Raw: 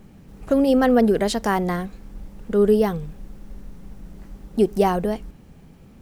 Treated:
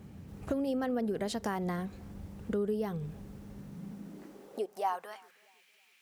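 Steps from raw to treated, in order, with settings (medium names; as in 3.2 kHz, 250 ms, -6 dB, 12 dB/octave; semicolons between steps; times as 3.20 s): compression 4:1, threshold -28 dBFS, peak gain reduction 13.5 dB; high-pass sweep 84 Hz -> 2.4 kHz, 3.44–5.54 s; on a send: filtered feedback delay 320 ms, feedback 40%, low-pass 810 Hz, level -23 dB; on the sum: trim -4 dB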